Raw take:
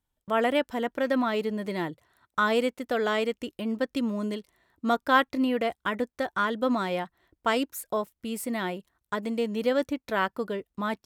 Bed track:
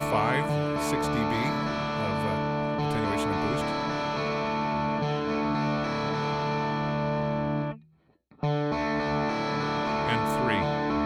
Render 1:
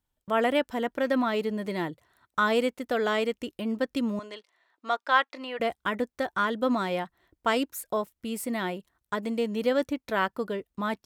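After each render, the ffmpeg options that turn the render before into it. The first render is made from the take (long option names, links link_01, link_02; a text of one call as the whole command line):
ffmpeg -i in.wav -filter_complex "[0:a]asettb=1/sr,asplit=3[link_01][link_02][link_03];[link_01]atrim=end=4.194[link_04];[link_02]atrim=start=4.19:end=5.6,asetpts=PTS-STARTPTS,afade=type=in:duration=0.004:curve=qsin,afade=type=out:start_time=1.406:duration=0.004:curve=qsin,highpass=670,lowpass=5400[link_05];[link_03]atrim=start=5.596[link_06];[link_04][link_05]acrossfade=duration=0.004:curve1=hsin:curve2=qsin[link_07];[link_07][link_06]acrossfade=duration=0.004:curve1=qsin:curve2=hsin" out.wav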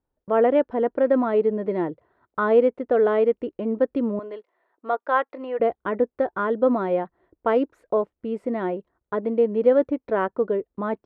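ffmpeg -i in.wav -af "lowpass=1500,equalizer=frequency=440:width=1.1:gain=10" out.wav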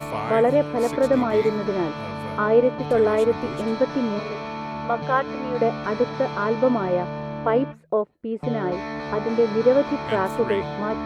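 ffmpeg -i in.wav -i bed.wav -filter_complex "[1:a]volume=-3dB[link_01];[0:a][link_01]amix=inputs=2:normalize=0" out.wav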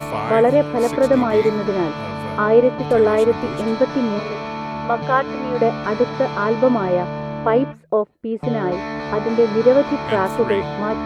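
ffmpeg -i in.wav -af "volume=4dB" out.wav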